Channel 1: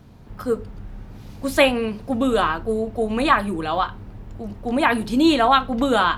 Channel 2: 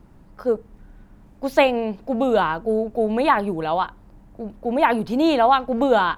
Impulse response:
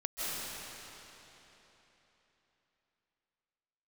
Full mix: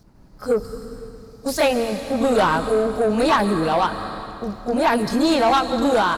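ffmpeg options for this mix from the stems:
-filter_complex "[0:a]highshelf=f=3800:t=q:w=3:g=7.5,volume=0.398,asplit=2[s0][s1];[s1]volume=0.398[s2];[1:a]agate=range=0.0224:threshold=0.00562:ratio=3:detection=peak,adelay=30,volume=1.12,asplit=2[s3][s4];[s4]apad=whole_len=272535[s5];[s0][s5]sidechaingate=range=0.0224:threshold=0.0126:ratio=16:detection=peak[s6];[2:a]atrim=start_sample=2205[s7];[s2][s7]afir=irnorm=-1:irlink=0[s8];[s6][s3][s8]amix=inputs=3:normalize=0,dynaudnorm=f=140:g=9:m=3.76,asoftclip=type=tanh:threshold=0.266"

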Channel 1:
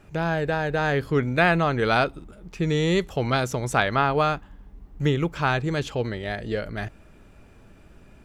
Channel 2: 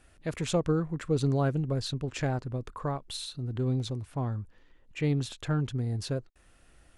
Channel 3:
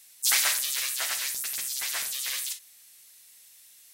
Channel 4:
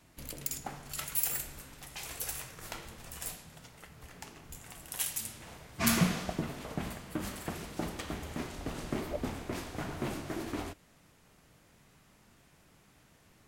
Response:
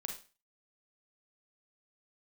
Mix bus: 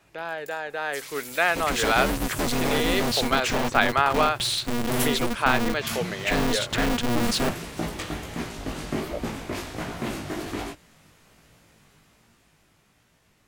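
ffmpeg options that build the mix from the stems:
-filter_complex "[0:a]highpass=490,lowpass=4600,volume=0.531,asplit=2[s0][s1];[1:a]volume=56.2,asoftclip=hard,volume=0.0178,dynaudnorm=f=110:g=5:m=2.82,aeval=exprs='val(0)*sgn(sin(2*PI*120*n/s))':c=same,adelay=1300,volume=0.668[s2];[2:a]acompressor=threshold=0.0316:ratio=6,adelay=700,volume=0.266[s3];[3:a]flanger=delay=17.5:depth=2.3:speed=1.3,volume=1.19[s4];[s1]apad=whole_len=594249[s5];[s4][s5]sidechaincompress=threshold=0.00708:ratio=8:attack=16:release=310[s6];[s0][s2][s3][s6]amix=inputs=4:normalize=0,equalizer=f=3100:w=0.63:g=2.5,dynaudnorm=f=190:g=17:m=2.37"

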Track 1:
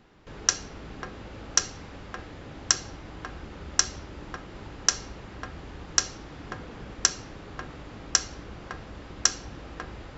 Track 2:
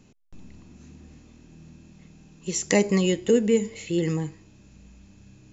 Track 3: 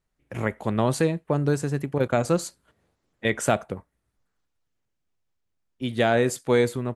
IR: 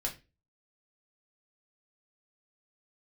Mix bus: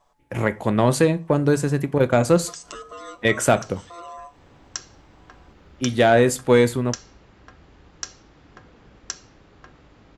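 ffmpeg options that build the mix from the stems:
-filter_complex "[0:a]adelay=2050,volume=0.15[s0];[1:a]aecho=1:1:7.4:0.96,acompressor=threshold=0.0794:ratio=6,aeval=exprs='val(0)*sin(2*PI*860*n/s)':c=same,volume=0.141,asplit=2[s1][s2];[2:a]volume=0.668,asplit=2[s3][s4];[s4]volume=0.266[s5];[s2]apad=whole_len=539191[s6];[s0][s6]sidechaincompress=threshold=0.002:ratio=8:attack=5.4:release=160[s7];[3:a]atrim=start_sample=2205[s8];[s5][s8]afir=irnorm=-1:irlink=0[s9];[s7][s1][s3][s9]amix=inputs=4:normalize=0,acontrast=83"

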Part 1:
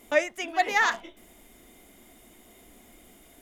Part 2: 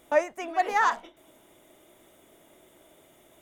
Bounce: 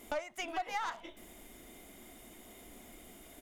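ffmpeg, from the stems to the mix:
-filter_complex "[0:a]acompressor=threshold=0.0282:ratio=6,aeval=exprs='(tanh(25.1*val(0)+0.5)-tanh(0.5))/25.1':c=same,volume=1.26[s0];[1:a]adelay=1.8,volume=0.282[s1];[s0][s1]amix=inputs=2:normalize=0,acompressor=threshold=0.0141:ratio=2"

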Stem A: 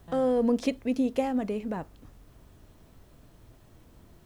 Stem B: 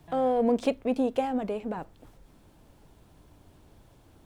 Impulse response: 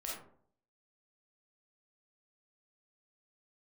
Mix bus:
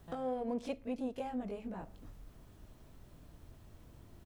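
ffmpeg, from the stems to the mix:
-filter_complex "[0:a]acompressor=threshold=0.0112:ratio=2,volume=0.562,asplit=2[s0][s1];[s1]volume=0.2[s2];[1:a]asubboost=boost=4.5:cutoff=210,adelay=20,volume=0.237,asplit=2[s3][s4];[s4]apad=whole_len=187601[s5];[s0][s5]sidechaincompress=threshold=0.00562:ratio=8:attack=5.7:release=232[s6];[2:a]atrim=start_sample=2205[s7];[s2][s7]afir=irnorm=-1:irlink=0[s8];[s6][s3][s8]amix=inputs=3:normalize=0"

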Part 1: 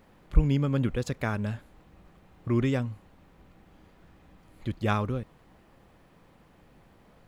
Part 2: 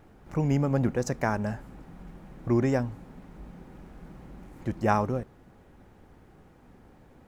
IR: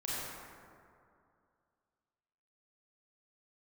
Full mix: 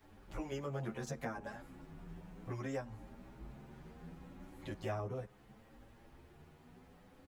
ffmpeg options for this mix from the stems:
-filter_complex "[0:a]tiltshelf=f=970:g=-6,volume=0.447[s0];[1:a]asplit=2[s1][s2];[s2]adelay=11.3,afreqshift=1.1[s3];[s1][s3]amix=inputs=2:normalize=1,adelay=7.5,volume=1,asplit=2[s4][s5];[s5]apad=whole_len=320696[s6];[s0][s6]sidechaincompress=threshold=0.02:ratio=8:attack=16:release=351[s7];[s7][s4]amix=inputs=2:normalize=0,acrossover=split=300|790[s8][s9][s10];[s8]acompressor=threshold=0.00794:ratio=4[s11];[s9]acompressor=threshold=0.01:ratio=4[s12];[s10]acompressor=threshold=0.00631:ratio=4[s13];[s11][s12][s13]amix=inputs=3:normalize=0,asplit=2[s14][s15];[s15]adelay=7.6,afreqshift=0.41[s16];[s14][s16]amix=inputs=2:normalize=1"

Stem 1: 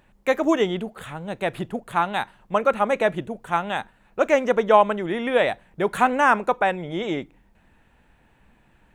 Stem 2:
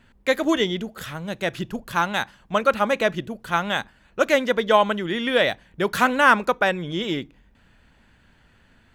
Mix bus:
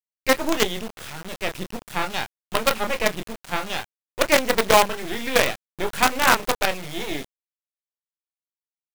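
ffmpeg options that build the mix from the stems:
-filter_complex "[0:a]highshelf=f=1900:t=q:w=1.5:g=7,volume=1[s0];[1:a]adelay=26,volume=0.531[s1];[s0][s1]amix=inputs=2:normalize=0,highshelf=f=2300:g=-3,acrusher=bits=3:dc=4:mix=0:aa=0.000001"

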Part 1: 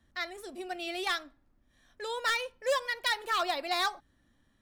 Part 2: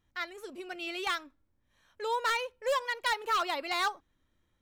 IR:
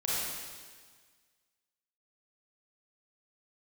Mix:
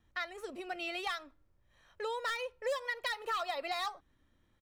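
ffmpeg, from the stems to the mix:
-filter_complex "[0:a]volume=0.335,asplit=2[s0][s1];[1:a]highshelf=f=6100:g=-10.5,acompressor=threshold=0.0126:ratio=3,adelay=1.8,volume=1.33[s2];[s1]apad=whole_len=203429[s3];[s2][s3]sidechaincompress=threshold=0.00794:ratio=8:attack=40:release=130[s4];[s0][s4]amix=inputs=2:normalize=0"

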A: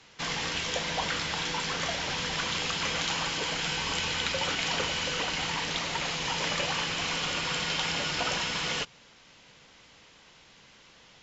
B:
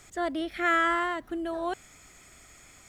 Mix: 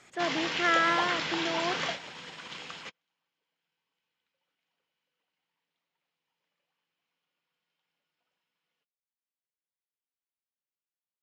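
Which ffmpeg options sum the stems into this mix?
-filter_complex "[0:a]acompressor=mode=upward:threshold=0.00562:ratio=2.5,volume=1[s0];[1:a]highpass=f=130:p=1,aeval=exprs='val(0)+0.000891*(sin(2*PI*60*n/s)+sin(2*PI*2*60*n/s)/2+sin(2*PI*3*60*n/s)/3+sin(2*PI*4*60*n/s)/4+sin(2*PI*5*60*n/s)/5)':c=same,volume=0.891,asplit=2[s1][s2];[s2]apad=whole_len=495103[s3];[s0][s3]sidechaingate=range=0.002:threshold=0.00251:ratio=16:detection=peak[s4];[s4][s1]amix=inputs=2:normalize=0,highpass=170,lowpass=3100,aemphasis=mode=production:type=50fm"

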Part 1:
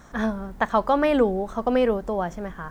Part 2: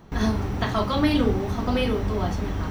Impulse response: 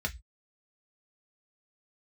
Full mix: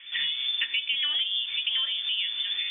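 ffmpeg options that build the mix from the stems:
-filter_complex "[0:a]highshelf=f=5500:g=11,volume=0.75,asplit=3[s0][s1][s2];[s1]volume=0.562[s3];[1:a]bandreject=f=92.24:t=h:w=4,bandreject=f=184.48:t=h:w=4,bandreject=f=276.72:t=h:w=4,bandreject=f=368.96:t=h:w=4,bandreject=f=461.2:t=h:w=4,bandreject=f=553.44:t=h:w=4,bandreject=f=645.68:t=h:w=4,bandreject=f=737.92:t=h:w=4,bandreject=f=830.16:t=h:w=4,bandreject=f=922.4:t=h:w=4,bandreject=f=1014.64:t=h:w=4,bandreject=f=1106.88:t=h:w=4,bandreject=f=1199.12:t=h:w=4,bandreject=f=1291.36:t=h:w=4,bandreject=f=1383.6:t=h:w=4,bandreject=f=1475.84:t=h:w=4,bandreject=f=1568.08:t=h:w=4,bandreject=f=1660.32:t=h:w=4,bandreject=f=1752.56:t=h:w=4,bandreject=f=1844.8:t=h:w=4,bandreject=f=1937.04:t=h:w=4,bandreject=f=2029.28:t=h:w=4,bandreject=f=2121.52:t=h:w=4,bandreject=f=2213.76:t=h:w=4,bandreject=f=2306:t=h:w=4,bandreject=f=2398.24:t=h:w=4,bandreject=f=2490.48:t=h:w=4,bandreject=f=2582.72:t=h:w=4,bandreject=f=2674.96:t=h:w=4,bandreject=f=2767.2:t=h:w=4,bandreject=f=2859.44:t=h:w=4,bandreject=f=2951.68:t=h:w=4,bandreject=f=3043.92:t=h:w=4,bandreject=f=3136.16:t=h:w=4,bandreject=f=3228.4:t=h:w=4,bandreject=f=3320.64:t=h:w=4,volume=0.708,asplit=2[s4][s5];[s5]volume=0.251[s6];[s2]apad=whole_len=119348[s7];[s4][s7]sidechaincompress=threshold=0.02:ratio=8:attack=6.2:release=107[s8];[2:a]atrim=start_sample=2205[s9];[s3][s6]amix=inputs=2:normalize=0[s10];[s10][s9]afir=irnorm=-1:irlink=0[s11];[s0][s8][s11]amix=inputs=3:normalize=0,lowpass=f=3100:t=q:w=0.5098,lowpass=f=3100:t=q:w=0.6013,lowpass=f=3100:t=q:w=0.9,lowpass=f=3100:t=q:w=2.563,afreqshift=-3600,acompressor=threshold=0.0501:ratio=4"

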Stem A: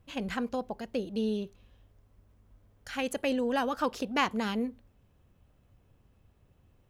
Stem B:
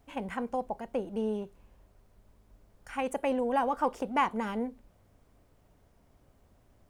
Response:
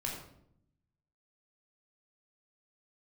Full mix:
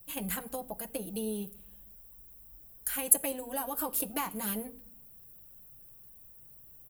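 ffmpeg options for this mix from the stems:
-filter_complex "[0:a]aecho=1:1:6.2:0.46,acrossover=split=350|3000[s0][s1][s2];[s1]acompressor=threshold=0.0178:ratio=6[s3];[s0][s3][s2]amix=inputs=3:normalize=0,aexciter=amount=15.1:drive=4.7:freq=8400,volume=0.596,asplit=2[s4][s5];[s5]volume=0.141[s6];[1:a]volume=-1,adelay=10,volume=0.316,asplit=2[s7][s8];[s8]apad=whole_len=304276[s9];[s4][s9]sidechaincompress=threshold=0.00794:ratio=8:attack=40:release=190[s10];[2:a]atrim=start_sample=2205[s11];[s6][s11]afir=irnorm=-1:irlink=0[s12];[s10][s7][s12]amix=inputs=3:normalize=0,highshelf=f=9200:g=11"

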